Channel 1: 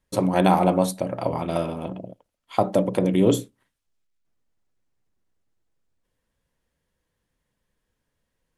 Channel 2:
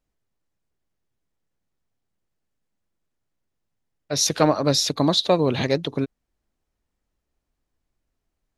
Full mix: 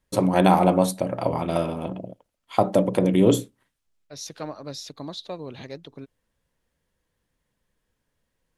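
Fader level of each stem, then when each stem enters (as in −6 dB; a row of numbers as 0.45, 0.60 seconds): +1.0, −16.0 decibels; 0.00, 0.00 seconds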